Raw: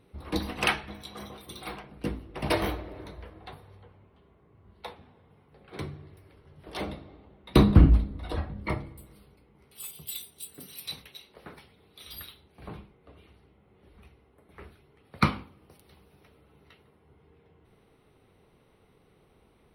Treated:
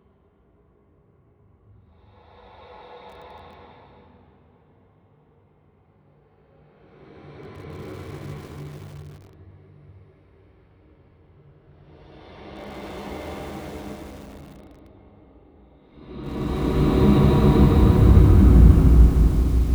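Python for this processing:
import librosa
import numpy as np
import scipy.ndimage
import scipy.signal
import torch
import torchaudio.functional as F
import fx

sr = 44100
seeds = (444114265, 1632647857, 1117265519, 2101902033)

y = fx.spacing_loss(x, sr, db_at_10k=24)
y = fx.paulstretch(y, sr, seeds[0], factor=5.2, window_s=0.5, from_s=4.27)
y = fx.echo_crushed(y, sr, ms=152, feedback_pct=80, bits=7, wet_db=-8)
y = y * librosa.db_to_amplitude(2.5)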